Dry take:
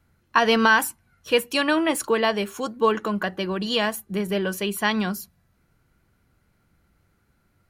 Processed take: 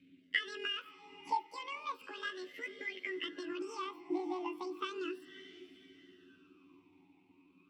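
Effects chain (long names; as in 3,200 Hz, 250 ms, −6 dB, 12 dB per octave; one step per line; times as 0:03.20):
pitch shift by two crossfaded delay taps +10.5 semitones
downward compressor 5 to 1, threshold −36 dBFS, peak gain reduction 19.5 dB
on a send: feedback delay with all-pass diffusion 539 ms, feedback 42%, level −14 dB
on the sum: formant filter swept between two vowels i-u 0.35 Hz
level +12 dB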